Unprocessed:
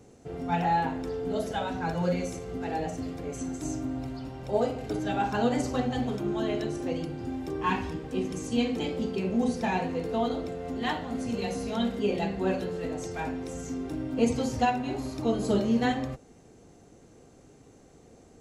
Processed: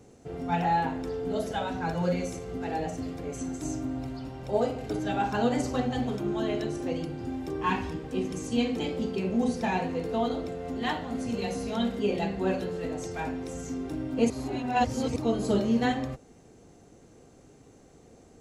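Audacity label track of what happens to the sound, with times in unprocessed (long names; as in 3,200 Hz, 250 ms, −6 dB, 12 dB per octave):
14.300000	15.160000	reverse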